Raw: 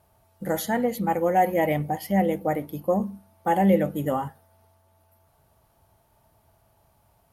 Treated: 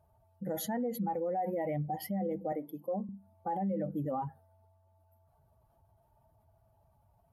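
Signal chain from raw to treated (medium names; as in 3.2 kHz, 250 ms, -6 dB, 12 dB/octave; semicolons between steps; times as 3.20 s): spectral contrast enhancement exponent 1.6; 2.52–3.09 s: high-pass 280 Hz 12 dB/octave; peak limiter -22 dBFS, peak gain reduction 11.5 dB; trim -5 dB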